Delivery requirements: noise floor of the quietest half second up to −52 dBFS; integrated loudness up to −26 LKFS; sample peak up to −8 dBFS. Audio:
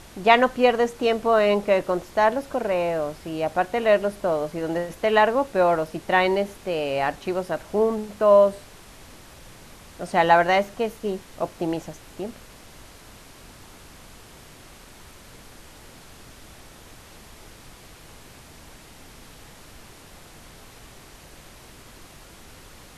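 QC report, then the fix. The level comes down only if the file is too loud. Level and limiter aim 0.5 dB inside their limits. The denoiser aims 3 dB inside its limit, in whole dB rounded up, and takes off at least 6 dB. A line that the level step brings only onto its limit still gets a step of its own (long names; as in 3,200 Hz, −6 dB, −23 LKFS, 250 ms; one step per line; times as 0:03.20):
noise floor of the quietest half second −46 dBFS: out of spec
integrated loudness −22.0 LKFS: out of spec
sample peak −3.0 dBFS: out of spec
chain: broadband denoise 6 dB, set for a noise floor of −46 dBFS
level −4.5 dB
brickwall limiter −8.5 dBFS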